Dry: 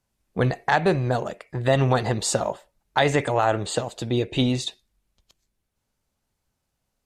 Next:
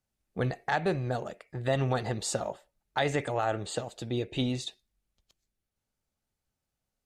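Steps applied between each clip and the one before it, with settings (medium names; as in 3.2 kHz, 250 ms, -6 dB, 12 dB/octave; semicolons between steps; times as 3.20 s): band-stop 1 kHz, Q 10; trim -8 dB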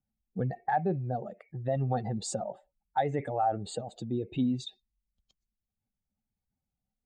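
spectral contrast enhancement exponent 1.8; small resonant body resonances 210/770/2200 Hz, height 9 dB, ringing for 35 ms; trim -3.5 dB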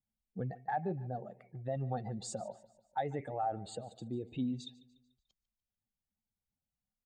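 feedback delay 146 ms, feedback 48%, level -20 dB; trim -7 dB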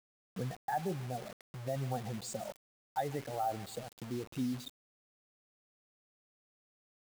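word length cut 8-bit, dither none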